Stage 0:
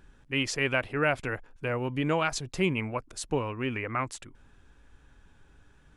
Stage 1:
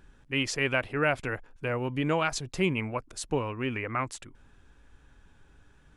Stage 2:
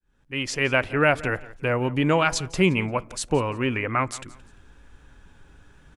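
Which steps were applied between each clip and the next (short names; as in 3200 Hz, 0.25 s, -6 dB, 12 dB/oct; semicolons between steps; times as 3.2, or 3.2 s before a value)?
nothing audible
opening faded in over 0.81 s; feedback echo 0.173 s, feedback 31%, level -20 dB; on a send at -20 dB: reverb RT60 0.40 s, pre-delay 3 ms; on the sum: gain +6.5 dB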